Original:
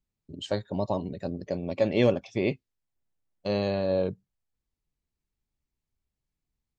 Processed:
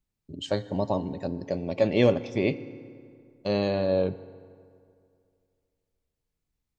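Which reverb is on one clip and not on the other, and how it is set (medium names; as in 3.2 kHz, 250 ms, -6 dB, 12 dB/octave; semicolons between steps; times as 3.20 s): FDN reverb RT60 2.4 s, low-frequency decay 1×, high-frequency decay 0.6×, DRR 14.5 dB; trim +1.5 dB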